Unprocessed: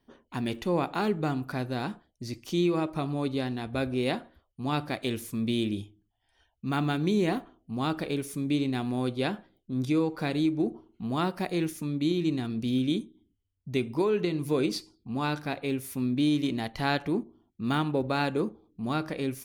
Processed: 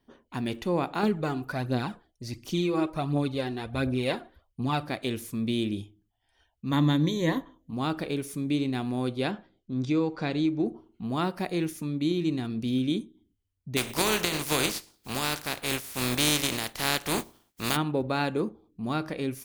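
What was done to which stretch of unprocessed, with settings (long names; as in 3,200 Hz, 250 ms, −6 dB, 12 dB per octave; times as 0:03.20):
0:01.03–0:04.83: phase shifter 1.4 Hz
0:06.71–0:07.73: EQ curve with evenly spaced ripples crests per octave 1.1, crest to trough 13 dB
0:09.31–0:10.66: inverse Chebyshev low-pass filter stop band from 12,000 Hz
0:13.76–0:17.75: compressing power law on the bin magnitudes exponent 0.37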